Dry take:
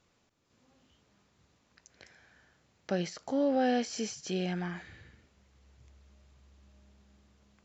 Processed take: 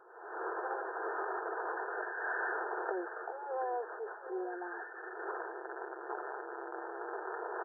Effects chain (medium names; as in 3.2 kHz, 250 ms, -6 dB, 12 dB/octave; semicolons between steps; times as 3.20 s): one-bit delta coder 32 kbps, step -47.5 dBFS; recorder AGC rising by 61 dB/s; transient shaper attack -7 dB, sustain +8 dB; brick-wall FIR band-pass 340–1800 Hz; comb of notches 570 Hz; delay 727 ms -13.5 dB